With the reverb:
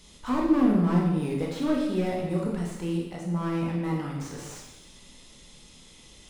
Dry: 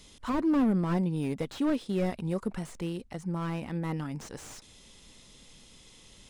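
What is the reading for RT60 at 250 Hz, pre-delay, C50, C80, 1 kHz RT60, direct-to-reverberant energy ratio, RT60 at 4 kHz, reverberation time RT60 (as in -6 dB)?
1.0 s, 7 ms, 2.5 dB, 5.0 dB, 1.0 s, -2.5 dB, 0.95 s, 1.0 s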